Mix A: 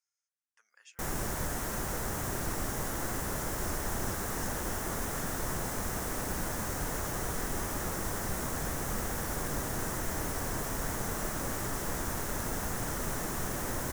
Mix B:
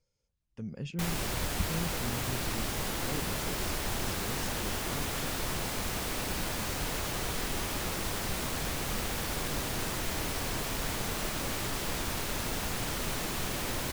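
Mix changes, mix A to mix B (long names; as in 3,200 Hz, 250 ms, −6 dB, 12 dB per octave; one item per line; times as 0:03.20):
speech: remove high-pass filter 1,300 Hz 24 dB per octave
master: add flat-topped bell 3,300 Hz +10.5 dB 1.3 octaves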